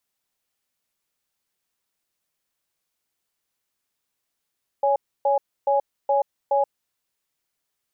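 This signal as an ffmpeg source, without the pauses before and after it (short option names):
-f lavfi -i "aevalsrc='0.106*(sin(2*PI*560*t)+sin(2*PI*830*t))*clip(min(mod(t,0.42),0.13-mod(t,0.42))/0.005,0,1)':d=2.05:s=44100"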